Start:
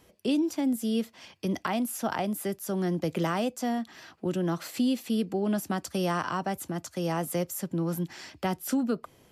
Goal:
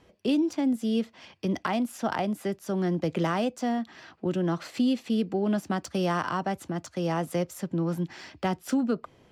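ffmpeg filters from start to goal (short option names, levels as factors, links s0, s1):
-af "adynamicsmooth=sensitivity=6.5:basefreq=5100,volume=1.19"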